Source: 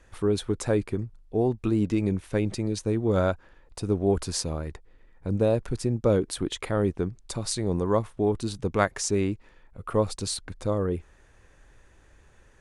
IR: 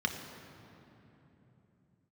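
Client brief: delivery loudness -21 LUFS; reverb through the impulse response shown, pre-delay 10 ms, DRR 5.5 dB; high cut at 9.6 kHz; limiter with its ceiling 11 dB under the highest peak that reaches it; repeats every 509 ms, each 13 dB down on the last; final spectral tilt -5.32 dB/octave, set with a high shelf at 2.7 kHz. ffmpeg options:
-filter_complex "[0:a]lowpass=9600,highshelf=f=2700:g=4,alimiter=limit=0.133:level=0:latency=1,aecho=1:1:509|1018|1527:0.224|0.0493|0.0108,asplit=2[s0][s1];[1:a]atrim=start_sample=2205,adelay=10[s2];[s1][s2]afir=irnorm=-1:irlink=0,volume=0.251[s3];[s0][s3]amix=inputs=2:normalize=0,volume=2.37"

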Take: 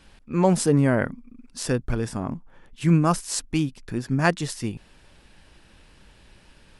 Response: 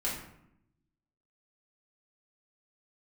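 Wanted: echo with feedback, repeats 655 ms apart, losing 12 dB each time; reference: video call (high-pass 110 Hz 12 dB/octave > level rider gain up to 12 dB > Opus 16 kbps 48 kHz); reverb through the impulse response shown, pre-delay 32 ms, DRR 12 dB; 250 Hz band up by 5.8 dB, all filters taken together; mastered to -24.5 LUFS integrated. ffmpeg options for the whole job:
-filter_complex "[0:a]equalizer=f=250:t=o:g=8.5,aecho=1:1:655|1310|1965:0.251|0.0628|0.0157,asplit=2[s0][s1];[1:a]atrim=start_sample=2205,adelay=32[s2];[s1][s2]afir=irnorm=-1:irlink=0,volume=0.141[s3];[s0][s3]amix=inputs=2:normalize=0,highpass=110,dynaudnorm=m=3.98,volume=0.631" -ar 48000 -c:a libopus -b:a 16k

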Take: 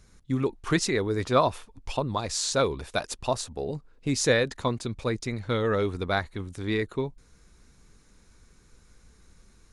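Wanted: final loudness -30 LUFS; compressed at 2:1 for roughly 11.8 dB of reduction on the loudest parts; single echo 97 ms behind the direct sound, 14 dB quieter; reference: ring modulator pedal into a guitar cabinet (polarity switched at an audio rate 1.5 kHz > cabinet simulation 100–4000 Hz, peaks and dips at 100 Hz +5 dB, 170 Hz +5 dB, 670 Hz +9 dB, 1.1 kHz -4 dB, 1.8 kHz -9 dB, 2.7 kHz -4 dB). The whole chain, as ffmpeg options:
-af "acompressor=threshold=0.0112:ratio=2,aecho=1:1:97:0.2,aeval=exprs='val(0)*sgn(sin(2*PI*1500*n/s))':c=same,highpass=100,equalizer=f=100:t=q:w=4:g=5,equalizer=f=170:t=q:w=4:g=5,equalizer=f=670:t=q:w=4:g=9,equalizer=f=1100:t=q:w=4:g=-4,equalizer=f=1800:t=q:w=4:g=-9,equalizer=f=2700:t=q:w=4:g=-4,lowpass=f=4000:w=0.5412,lowpass=f=4000:w=1.3066,volume=2.99"

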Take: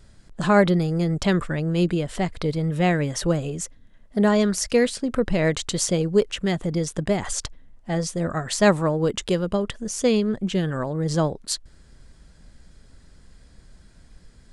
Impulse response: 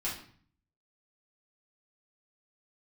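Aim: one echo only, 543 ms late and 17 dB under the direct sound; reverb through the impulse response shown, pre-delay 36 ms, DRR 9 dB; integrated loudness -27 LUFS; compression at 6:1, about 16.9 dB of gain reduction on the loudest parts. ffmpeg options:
-filter_complex "[0:a]acompressor=threshold=0.0251:ratio=6,aecho=1:1:543:0.141,asplit=2[s0][s1];[1:a]atrim=start_sample=2205,adelay=36[s2];[s1][s2]afir=irnorm=-1:irlink=0,volume=0.224[s3];[s0][s3]amix=inputs=2:normalize=0,volume=2.51"

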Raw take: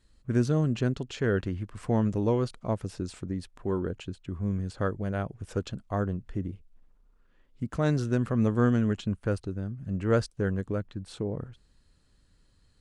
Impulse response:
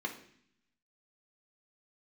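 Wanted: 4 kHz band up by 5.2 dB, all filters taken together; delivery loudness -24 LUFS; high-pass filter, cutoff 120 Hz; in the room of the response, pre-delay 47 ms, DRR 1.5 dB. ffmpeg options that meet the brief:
-filter_complex "[0:a]highpass=120,equalizer=f=4000:t=o:g=6.5,asplit=2[s0][s1];[1:a]atrim=start_sample=2205,adelay=47[s2];[s1][s2]afir=irnorm=-1:irlink=0,volume=0.596[s3];[s0][s3]amix=inputs=2:normalize=0,volume=1.58"

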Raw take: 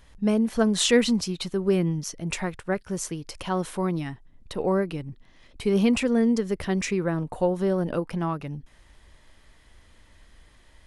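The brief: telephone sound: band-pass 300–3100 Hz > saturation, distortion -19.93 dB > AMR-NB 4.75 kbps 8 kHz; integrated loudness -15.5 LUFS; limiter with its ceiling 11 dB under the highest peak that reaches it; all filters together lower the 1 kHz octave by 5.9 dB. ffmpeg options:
-af "equalizer=f=1000:t=o:g=-8,alimiter=limit=0.106:level=0:latency=1,highpass=300,lowpass=3100,asoftclip=threshold=0.0668,volume=10" -ar 8000 -c:a libopencore_amrnb -b:a 4750

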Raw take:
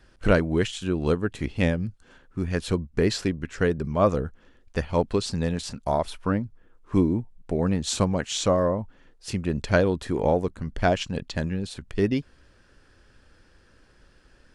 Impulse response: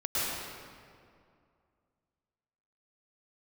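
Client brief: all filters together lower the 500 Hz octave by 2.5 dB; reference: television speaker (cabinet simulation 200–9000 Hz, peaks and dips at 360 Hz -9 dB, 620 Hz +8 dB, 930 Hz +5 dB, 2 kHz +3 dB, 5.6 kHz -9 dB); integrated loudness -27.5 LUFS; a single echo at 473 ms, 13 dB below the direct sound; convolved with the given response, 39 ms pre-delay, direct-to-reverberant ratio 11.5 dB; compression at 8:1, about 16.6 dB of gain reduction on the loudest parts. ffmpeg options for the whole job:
-filter_complex "[0:a]equalizer=f=500:t=o:g=-7.5,acompressor=threshold=0.0178:ratio=8,aecho=1:1:473:0.224,asplit=2[s0][s1];[1:a]atrim=start_sample=2205,adelay=39[s2];[s1][s2]afir=irnorm=-1:irlink=0,volume=0.0891[s3];[s0][s3]amix=inputs=2:normalize=0,highpass=f=200:w=0.5412,highpass=f=200:w=1.3066,equalizer=f=360:t=q:w=4:g=-9,equalizer=f=620:t=q:w=4:g=8,equalizer=f=930:t=q:w=4:g=5,equalizer=f=2000:t=q:w=4:g=3,equalizer=f=5600:t=q:w=4:g=-9,lowpass=f=9000:w=0.5412,lowpass=f=9000:w=1.3066,volume=5.31"

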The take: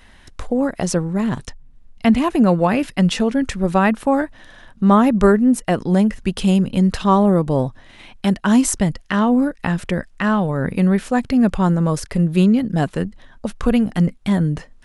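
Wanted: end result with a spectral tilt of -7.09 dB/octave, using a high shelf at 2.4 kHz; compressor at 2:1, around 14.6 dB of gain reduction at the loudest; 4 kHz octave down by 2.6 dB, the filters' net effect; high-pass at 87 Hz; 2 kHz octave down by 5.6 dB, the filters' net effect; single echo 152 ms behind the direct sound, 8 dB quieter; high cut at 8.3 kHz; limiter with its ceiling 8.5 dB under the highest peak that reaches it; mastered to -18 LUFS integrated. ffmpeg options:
-af "highpass=87,lowpass=8300,equalizer=f=2000:t=o:g=-8.5,highshelf=f=2400:g=4,equalizer=f=4000:t=o:g=-3.5,acompressor=threshold=0.0141:ratio=2,alimiter=level_in=1.06:limit=0.0631:level=0:latency=1,volume=0.944,aecho=1:1:152:0.398,volume=5.96"

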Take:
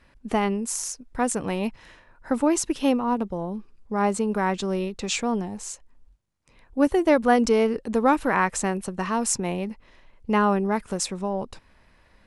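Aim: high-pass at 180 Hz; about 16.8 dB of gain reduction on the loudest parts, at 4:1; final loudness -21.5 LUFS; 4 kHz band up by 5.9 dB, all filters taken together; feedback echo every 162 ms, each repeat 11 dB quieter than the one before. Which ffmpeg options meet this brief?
-af "highpass=180,equalizer=f=4000:t=o:g=8,acompressor=threshold=0.0178:ratio=4,aecho=1:1:162|324|486:0.282|0.0789|0.0221,volume=5.62"

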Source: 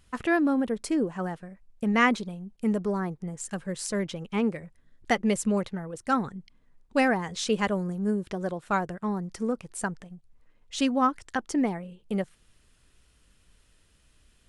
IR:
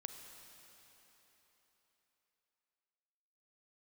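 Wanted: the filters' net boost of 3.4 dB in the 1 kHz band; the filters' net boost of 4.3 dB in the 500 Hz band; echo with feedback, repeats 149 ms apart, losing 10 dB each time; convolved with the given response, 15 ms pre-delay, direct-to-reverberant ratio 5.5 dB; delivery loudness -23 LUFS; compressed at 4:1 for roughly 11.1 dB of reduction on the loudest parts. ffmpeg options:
-filter_complex "[0:a]equalizer=f=500:t=o:g=4.5,equalizer=f=1000:t=o:g=3,acompressor=threshold=0.0355:ratio=4,aecho=1:1:149|298|447|596:0.316|0.101|0.0324|0.0104,asplit=2[s0][s1];[1:a]atrim=start_sample=2205,adelay=15[s2];[s1][s2]afir=irnorm=-1:irlink=0,volume=0.794[s3];[s0][s3]amix=inputs=2:normalize=0,volume=2.82"

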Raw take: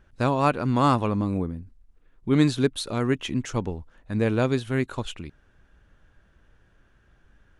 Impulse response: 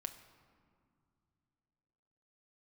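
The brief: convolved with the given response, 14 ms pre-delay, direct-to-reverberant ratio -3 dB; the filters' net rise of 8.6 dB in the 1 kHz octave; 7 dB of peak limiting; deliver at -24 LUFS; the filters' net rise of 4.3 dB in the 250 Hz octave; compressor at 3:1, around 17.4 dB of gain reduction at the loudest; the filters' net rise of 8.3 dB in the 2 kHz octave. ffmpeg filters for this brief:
-filter_complex "[0:a]equalizer=f=250:t=o:g=4.5,equalizer=f=1000:t=o:g=8,equalizer=f=2000:t=o:g=8,acompressor=threshold=0.02:ratio=3,alimiter=level_in=1.33:limit=0.0631:level=0:latency=1,volume=0.75,asplit=2[s0][s1];[1:a]atrim=start_sample=2205,adelay=14[s2];[s1][s2]afir=irnorm=-1:irlink=0,volume=1.88[s3];[s0][s3]amix=inputs=2:normalize=0,volume=2.82"

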